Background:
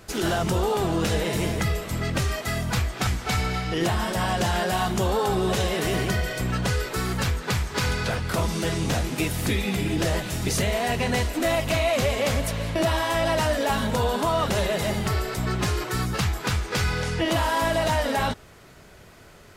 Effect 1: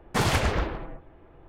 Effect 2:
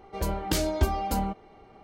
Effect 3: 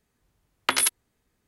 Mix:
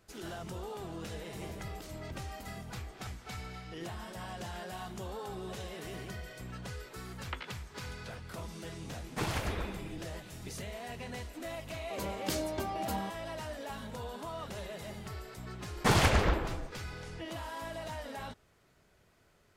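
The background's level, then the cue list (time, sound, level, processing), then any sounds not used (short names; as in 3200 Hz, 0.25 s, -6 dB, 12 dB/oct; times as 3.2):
background -18 dB
1.29 add 2 -3 dB + compressor, threshold -43 dBFS
6.64 add 3 -17 dB + LPF 3400 Hz 24 dB/oct
9.02 add 1 -11 dB
11.77 add 2 -7 dB + HPF 160 Hz
15.7 add 1 -1.5 dB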